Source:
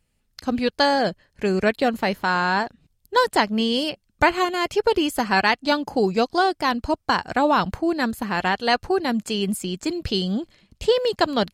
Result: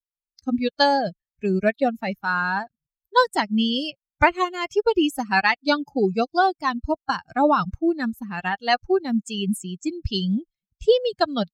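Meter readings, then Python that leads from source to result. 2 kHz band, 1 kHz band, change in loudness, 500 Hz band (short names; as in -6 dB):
-1.0 dB, -0.5 dB, -0.5 dB, -1.0 dB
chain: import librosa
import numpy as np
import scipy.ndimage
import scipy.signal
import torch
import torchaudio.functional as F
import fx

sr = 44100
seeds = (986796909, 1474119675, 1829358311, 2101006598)

y = fx.bin_expand(x, sr, power=2.0)
y = fx.high_shelf(y, sr, hz=9600.0, db=-9.0)
y = fx.quant_float(y, sr, bits=8)
y = y * librosa.db_to_amplitude(4.0)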